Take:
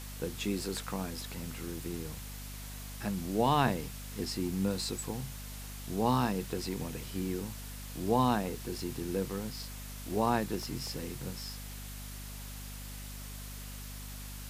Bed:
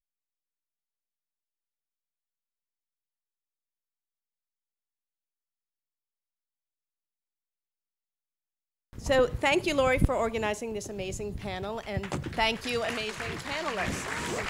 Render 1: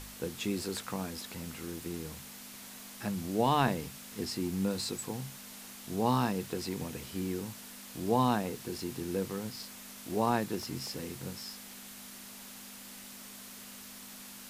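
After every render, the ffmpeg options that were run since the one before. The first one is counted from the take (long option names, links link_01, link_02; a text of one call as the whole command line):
ffmpeg -i in.wav -af "bandreject=frequency=50:width_type=h:width=4,bandreject=frequency=100:width_type=h:width=4,bandreject=frequency=150:width_type=h:width=4" out.wav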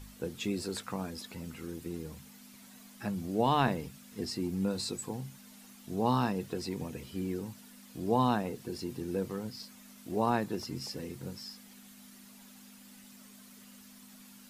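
ffmpeg -i in.wav -af "afftdn=noise_reduction=10:noise_floor=-48" out.wav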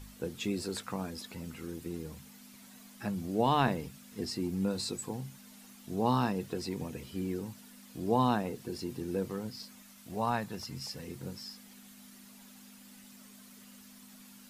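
ffmpeg -i in.wav -filter_complex "[0:a]asettb=1/sr,asplit=3[link_01][link_02][link_03];[link_01]atrim=end=9.824[link_04];[link_02]atrim=start=9.82:end=11.08,asetpts=PTS-STARTPTS,afade=type=in:duration=0.004:curve=qsin,afade=type=out:start_time=1.256:duration=0.004:curve=qsin,equalizer=frequency=340:width=1.5:gain=-11[link_05];[link_03]atrim=start=11.076[link_06];[link_04][link_05]acrossfade=duration=0.004:curve1=hsin:curve2=qsin[link_07];[link_07][link_06]acrossfade=duration=0.004:curve1=qsin:curve2=hsin" out.wav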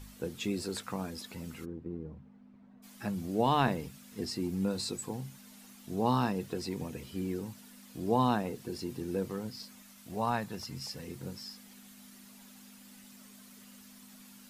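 ffmpeg -i in.wav -filter_complex "[0:a]asplit=3[link_01][link_02][link_03];[link_01]afade=type=out:start_time=1.64:duration=0.02[link_04];[link_02]adynamicsmooth=sensitivity=0.5:basefreq=890,afade=type=in:start_time=1.64:duration=0.02,afade=type=out:start_time=2.82:duration=0.02[link_05];[link_03]afade=type=in:start_time=2.82:duration=0.02[link_06];[link_04][link_05][link_06]amix=inputs=3:normalize=0" out.wav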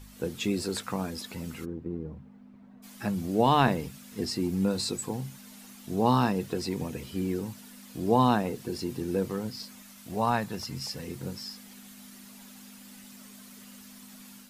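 ffmpeg -i in.wav -af "dynaudnorm=framelen=100:gausssize=3:maxgain=5dB" out.wav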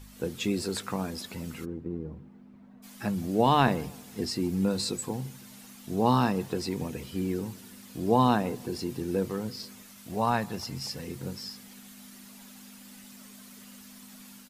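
ffmpeg -i in.wav -filter_complex "[0:a]asplit=2[link_01][link_02];[link_02]adelay=163,lowpass=frequency=1100:poles=1,volume=-22dB,asplit=2[link_03][link_04];[link_04]adelay=163,lowpass=frequency=1100:poles=1,volume=0.52,asplit=2[link_05][link_06];[link_06]adelay=163,lowpass=frequency=1100:poles=1,volume=0.52,asplit=2[link_07][link_08];[link_08]adelay=163,lowpass=frequency=1100:poles=1,volume=0.52[link_09];[link_01][link_03][link_05][link_07][link_09]amix=inputs=5:normalize=0" out.wav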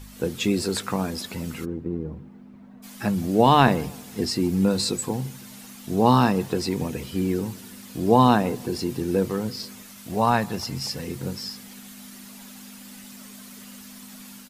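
ffmpeg -i in.wav -af "volume=6dB" out.wav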